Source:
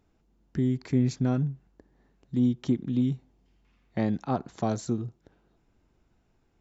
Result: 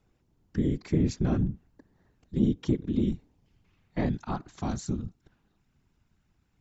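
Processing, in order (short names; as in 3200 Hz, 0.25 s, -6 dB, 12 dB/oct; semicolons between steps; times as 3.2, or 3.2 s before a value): whisperiser; bell 510 Hz -3 dB 1.4 oct, from 4.09 s -11 dB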